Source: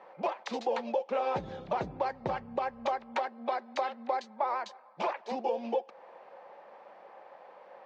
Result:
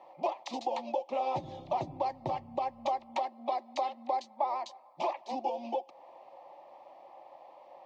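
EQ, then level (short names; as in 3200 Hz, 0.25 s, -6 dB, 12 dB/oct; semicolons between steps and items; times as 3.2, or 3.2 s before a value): fixed phaser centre 300 Hz, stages 8; +1.5 dB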